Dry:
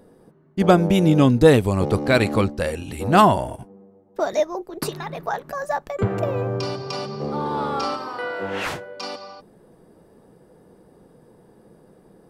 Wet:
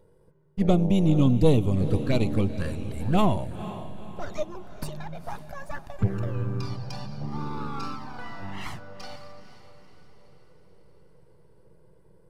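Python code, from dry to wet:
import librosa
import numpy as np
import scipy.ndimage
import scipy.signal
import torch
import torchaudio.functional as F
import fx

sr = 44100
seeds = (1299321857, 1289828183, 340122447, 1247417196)

p1 = np.where(x < 0.0, 10.0 ** (-7.0 / 20.0) * x, x)
p2 = fx.env_flanger(p1, sr, rest_ms=2.1, full_db=-16.5)
p3 = fx.bass_treble(p2, sr, bass_db=8, treble_db=0)
p4 = p3 + fx.echo_diffused(p3, sr, ms=485, feedback_pct=48, wet_db=-13.0, dry=0)
y = p4 * librosa.db_to_amplitude(-5.5)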